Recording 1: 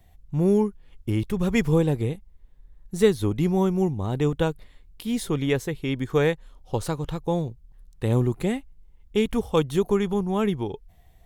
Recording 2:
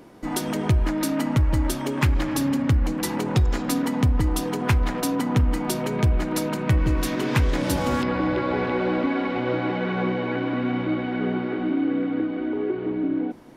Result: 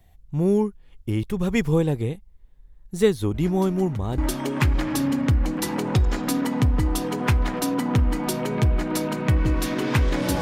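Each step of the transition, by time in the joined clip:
recording 1
3.34 add recording 2 from 0.75 s 0.84 s -14.5 dB
4.18 switch to recording 2 from 1.59 s

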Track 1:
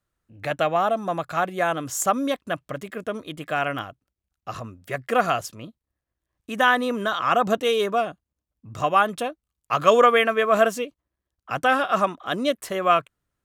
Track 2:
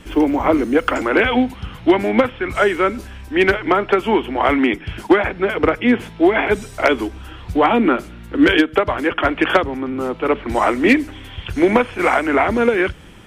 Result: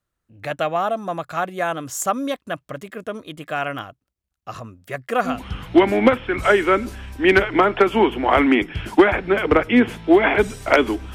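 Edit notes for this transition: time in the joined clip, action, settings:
track 1
5.33 switch to track 2 from 1.45 s, crossfade 0.20 s

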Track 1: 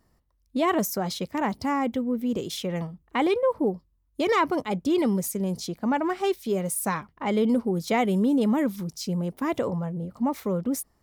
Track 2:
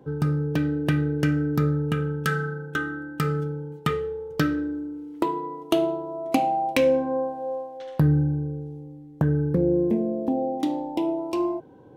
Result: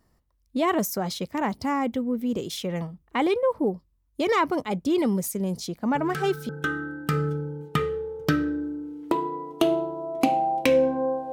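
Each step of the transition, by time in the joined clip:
track 1
5.95 add track 2 from 2.06 s 0.54 s -8 dB
6.49 switch to track 2 from 2.6 s

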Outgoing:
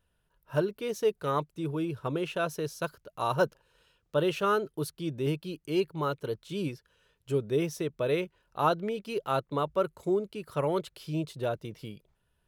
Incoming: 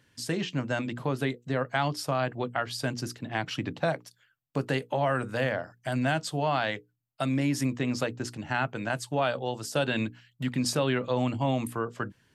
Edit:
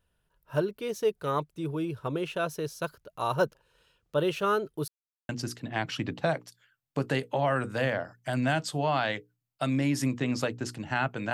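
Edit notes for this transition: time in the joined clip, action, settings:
outgoing
4.88–5.29 mute
5.29 switch to incoming from 2.88 s

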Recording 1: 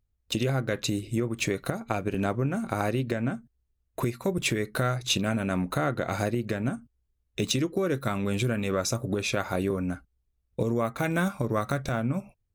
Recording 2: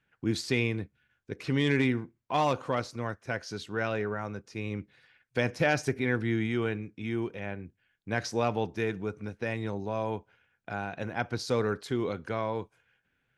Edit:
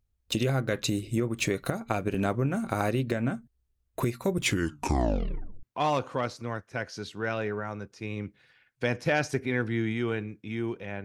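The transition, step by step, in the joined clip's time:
recording 1
4.38 tape stop 1.25 s
5.63 switch to recording 2 from 2.17 s

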